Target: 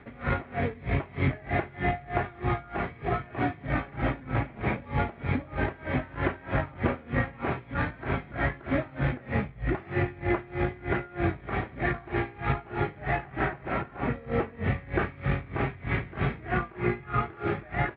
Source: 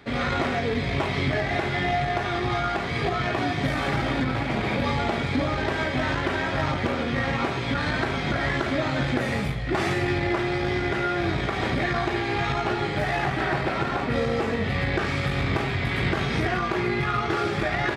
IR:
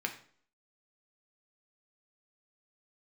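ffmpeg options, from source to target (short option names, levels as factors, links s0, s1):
-af "lowpass=f=2500:w=0.5412,lowpass=f=2500:w=1.3066,lowshelf=f=120:g=6,aeval=exprs='val(0)*pow(10,-24*(0.5-0.5*cos(2*PI*3.2*n/s))/20)':c=same"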